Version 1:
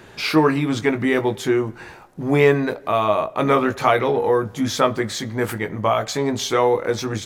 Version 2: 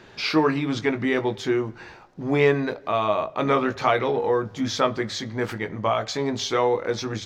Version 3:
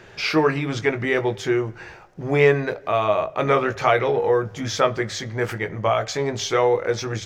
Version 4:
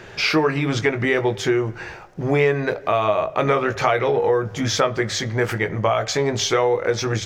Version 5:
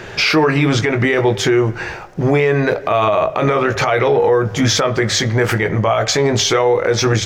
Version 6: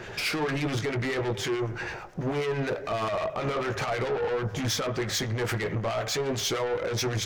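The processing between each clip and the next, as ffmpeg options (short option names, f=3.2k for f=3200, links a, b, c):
-af "highshelf=f=7.3k:t=q:w=1.5:g=-11.5,bandreject=f=50:t=h:w=6,bandreject=f=100:t=h:w=6,bandreject=f=150:t=h:w=6,volume=-4dB"
-af "equalizer=f=250:t=o:w=0.67:g=-10,equalizer=f=1k:t=o:w=0.67:g=-5,equalizer=f=4k:t=o:w=0.67:g=-7,volume=5dB"
-af "acompressor=threshold=-22dB:ratio=3,volume=5.5dB"
-af "alimiter=limit=-14.5dB:level=0:latency=1:release=28,volume=8.5dB"
-filter_complex "[0:a]asoftclip=type=tanh:threshold=-18dB,acrossover=split=1300[a][b];[a]aeval=exprs='val(0)*(1-0.5/2+0.5/2*cos(2*PI*9.2*n/s))':c=same[c];[b]aeval=exprs='val(0)*(1-0.5/2-0.5/2*cos(2*PI*9.2*n/s))':c=same[d];[c][d]amix=inputs=2:normalize=0,volume=-5.5dB"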